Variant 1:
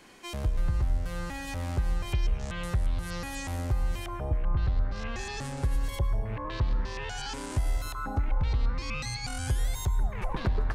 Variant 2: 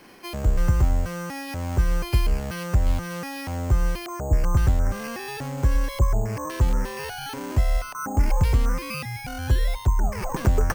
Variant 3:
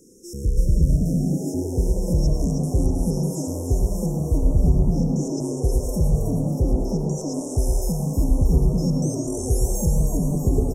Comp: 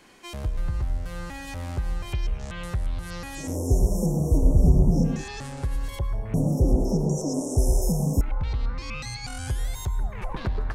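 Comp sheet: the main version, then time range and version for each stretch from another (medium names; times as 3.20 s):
1
3.47–5.14 s: from 3, crossfade 0.24 s
6.34–8.21 s: from 3
not used: 2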